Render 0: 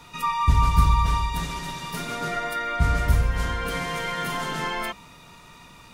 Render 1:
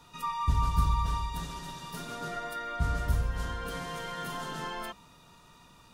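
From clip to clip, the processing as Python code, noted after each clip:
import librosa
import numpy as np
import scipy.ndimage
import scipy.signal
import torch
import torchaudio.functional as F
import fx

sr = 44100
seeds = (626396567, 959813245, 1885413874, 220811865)

y = fx.peak_eq(x, sr, hz=2200.0, db=-10.5, octaves=0.3)
y = F.gain(torch.from_numpy(y), -8.0).numpy()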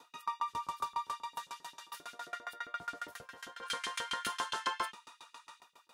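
y = fx.spec_box(x, sr, start_s=3.63, length_s=1.98, low_hz=830.0, high_hz=11000.0, gain_db=9)
y = fx.filter_lfo_highpass(y, sr, shape='saw_up', hz=7.5, low_hz=270.0, high_hz=3500.0, q=1.5)
y = fx.tremolo_decay(y, sr, direction='decaying', hz=7.3, depth_db=25)
y = F.gain(torch.from_numpy(y), 1.0).numpy()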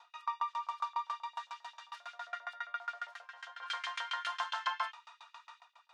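y = scipy.signal.sosfilt(scipy.signal.ellip(4, 1.0, 70, 690.0, 'highpass', fs=sr, output='sos'), x)
y = fx.air_absorb(y, sr, metres=140.0)
y = F.gain(torch.from_numpy(y), 2.0).numpy()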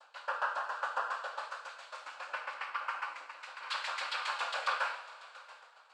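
y = fx.noise_vocoder(x, sr, seeds[0], bands=8)
y = fx.rev_double_slope(y, sr, seeds[1], early_s=0.6, late_s=3.2, knee_db=-18, drr_db=1.0)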